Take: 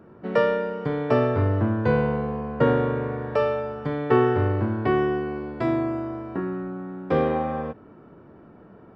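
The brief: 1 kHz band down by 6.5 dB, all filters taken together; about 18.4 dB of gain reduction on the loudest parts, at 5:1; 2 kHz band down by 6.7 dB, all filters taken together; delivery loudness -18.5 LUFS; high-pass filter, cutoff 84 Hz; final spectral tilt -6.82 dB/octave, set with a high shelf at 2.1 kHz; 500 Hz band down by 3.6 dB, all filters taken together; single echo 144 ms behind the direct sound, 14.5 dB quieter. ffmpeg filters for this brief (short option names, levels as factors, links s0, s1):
-af "highpass=84,equalizer=f=500:t=o:g=-3,equalizer=f=1000:t=o:g=-6.5,equalizer=f=2000:t=o:g=-8.5,highshelf=f=2100:g=4.5,acompressor=threshold=0.0112:ratio=5,aecho=1:1:144:0.188,volume=14.1"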